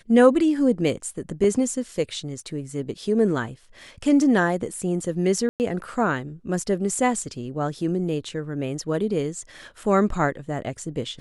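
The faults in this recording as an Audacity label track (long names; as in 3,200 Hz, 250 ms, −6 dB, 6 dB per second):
1.440000	1.440000	drop-out 2.3 ms
5.490000	5.600000	drop-out 109 ms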